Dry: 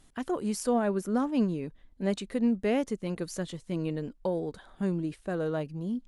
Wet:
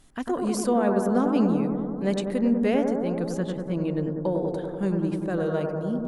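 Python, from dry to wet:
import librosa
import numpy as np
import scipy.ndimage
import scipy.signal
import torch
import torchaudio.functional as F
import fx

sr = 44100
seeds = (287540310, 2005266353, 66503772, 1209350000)

y = fx.high_shelf(x, sr, hz=3800.0, db=-7.5, at=(2.74, 4.48))
y = fx.echo_bbd(y, sr, ms=97, stages=1024, feedback_pct=79, wet_db=-4.5)
y = F.gain(torch.from_numpy(y), 3.0).numpy()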